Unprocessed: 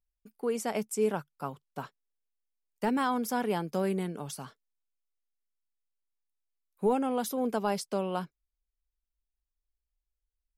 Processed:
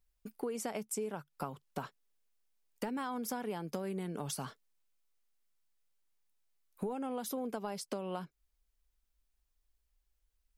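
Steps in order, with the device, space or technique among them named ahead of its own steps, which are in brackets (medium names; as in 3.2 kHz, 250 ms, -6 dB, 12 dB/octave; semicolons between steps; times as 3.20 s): serial compression, peaks first (compression, threshold -36 dBFS, peak gain reduction 13.5 dB; compression 2:1, threshold -47 dBFS, peak gain reduction 8 dB); trim +7.5 dB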